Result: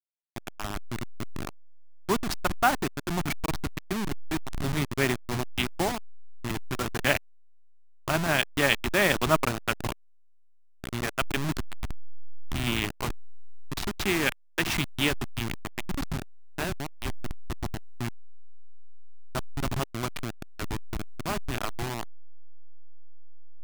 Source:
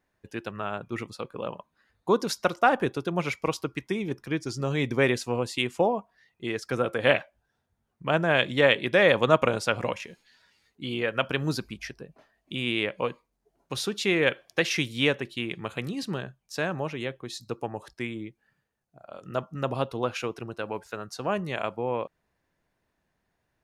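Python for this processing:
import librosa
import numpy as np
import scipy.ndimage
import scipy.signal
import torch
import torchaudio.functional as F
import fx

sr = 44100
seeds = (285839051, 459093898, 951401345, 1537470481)

y = fx.delta_hold(x, sr, step_db=-22.0)
y = fx.peak_eq(y, sr, hz=500.0, db=-14.0, octaves=0.34)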